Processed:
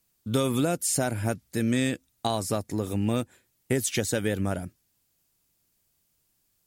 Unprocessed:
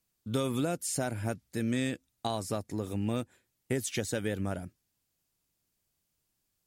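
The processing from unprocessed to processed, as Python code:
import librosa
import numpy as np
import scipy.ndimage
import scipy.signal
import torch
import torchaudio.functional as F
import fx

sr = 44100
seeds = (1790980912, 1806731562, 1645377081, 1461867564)

y = fx.high_shelf(x, sr, hz=9400.0, db=5.0)
y = F.gain(torch.from_numpy(y), 5.5).numpy()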